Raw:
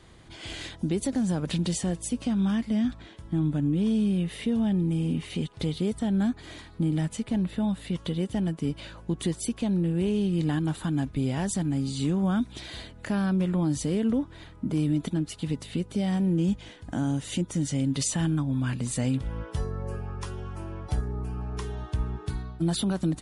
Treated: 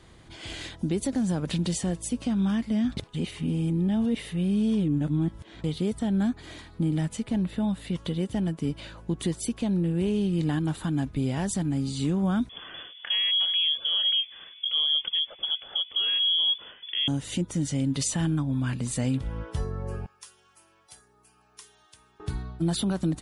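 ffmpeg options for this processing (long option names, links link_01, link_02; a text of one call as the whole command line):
ffmpeg -i in.wav -filter_complex "[0:a]asettb=1/sr,asplit=3[link_01][link_02][link_03];[link_01]atrim=end=12.494[link_04];[link_02]atrim=start=12.49:end=17.08,asetpts=PTS-STARTPTS,afade=type=in:duration=0.004:curve=qsin,afade=type=out:start_time=4.586:duration=0.004:curve=qsin,lowpass=frequency=3000:width_type=q:width=0.5098,lowpass=frequency=3000:width_type=q:width=0.6013,lowpass=frequency=3000:width_type=q:width=0.9,lowpass=frequency=3000:width_type=q:width=2.563,afreqshift=-3500[link_05];[link_03]atrim=start=17.076[link_06];[link_04][link_05]acrossfade=duration=0.004:curve1=hsin:curve2=qsin[link_07];[link_07][link_06]acrossfade=duration=0.004:curve1=qsin:curve2=hsin,asettb=1/sr,asplit=3[link_08][link_09][link_10];[link_08]atrim=end=20.064[link_11];[link_09]atrim=start=20.06:end=22.2,asetpts=PTS-STARTPTS,afade=type=in:duration=0.004:curve=qsin,afade=type=out:start_time=2.136:duration=0.004:curve=qsin,aderivative[link_12];[link_10]atrim=start=22.196[link_13];[link_11][link_12]acrossfade=duration=0.004:curve1=hsin:curve2=qsin[link_14];[link_14][link_13]acrossfade=duration=0.004:curve1=qsin:curve2=hsin,asplit=3[link_15][link_16][link_17];[link_15]atrim=end=2.972[link_18];[link_16]atrim=start=2.968:end=5.642,asetpts=PTS-STARTPTS,areverse[link_19];[link_17]atrim=start=5.638[link_20];[link_18][link_19]acrossfade=duration=0.004:curve1=hsin:curve2=hsin[link_21];[link_21][link_20]acrossfade=duration=0.004:curve1=hsin:curve2=hsin" out.wav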